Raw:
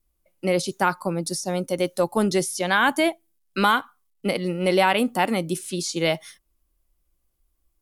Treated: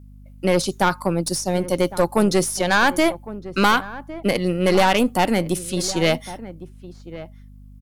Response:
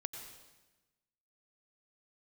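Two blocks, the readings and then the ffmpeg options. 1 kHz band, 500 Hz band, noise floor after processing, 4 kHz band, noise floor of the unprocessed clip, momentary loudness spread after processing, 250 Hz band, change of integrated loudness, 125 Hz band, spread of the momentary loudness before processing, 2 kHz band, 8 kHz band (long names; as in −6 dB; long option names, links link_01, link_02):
+2.5 dB, +3.5 dB, −43 dBFS, +3.0 dB, −72 dBFS, 18 LU, +4.0 dB, +3.0 dB, +5.0 dB, 8 LU, +2.0 dB, +4.0 dB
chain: -filter_complex "[0:a]aeval=exprs='0.501*(cos(1*acos(clip(val(0)/0.501,-1,1)))-cos(1*PI/2))+0.224*(cos(2*acos(clip(val(0)/0.501,-1,1)))-cos(2*PI/2))+0.0794*(cos(5*acos(clip(val(0)/0.501,-1,1)))-cos(5*PI/2))+0.0355*(cos(6*acos(clip(val(0)/0.501,-1,1)))-cos(6*PI/2))':channel_layout=same,asplit=2[link_01][link_02];[link_02]adelay=1108,volume=-15dB,highshelf=frequency=4000:gain=-24.9[link_03];[link_01][link_03]amix=inputs=2:normalize=0,aeval=exprs='val(0)+0.00891*(sin(2*PI*50*n/s)+sin(2*PI*2*50*n/s)/2+sin(2*PI*3*50*n/s)/3+sin(2*PI*4*50*n/s)/4+sin(2*PI*5*50*n/s)/5)':channel_layout=same,volume=-1dB"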